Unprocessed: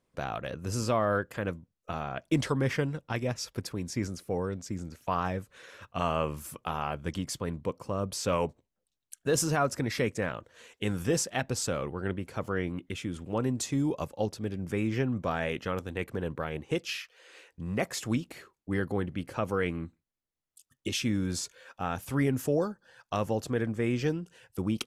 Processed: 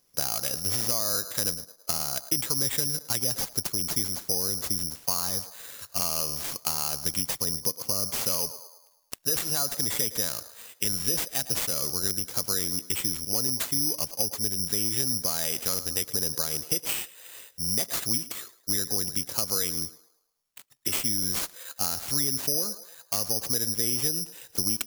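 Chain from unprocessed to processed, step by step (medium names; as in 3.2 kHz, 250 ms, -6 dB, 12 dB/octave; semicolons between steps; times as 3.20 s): in parallel at -0.5 dB: gain riding; on the sum: treble shelf 3.7 kHz +8.5 dB; band-stop 2.4 kHz, Q 14; band-passed feedback delay 108 ms, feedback 51%, band-pass 870 Hz, level -15 dB; compression, threshold -24 dBFS, peak gain reduction 10 dB; treble shelf 8 kHz -8 dB; careless resampling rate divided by 8×, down none, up zero stuff; trim -8 dB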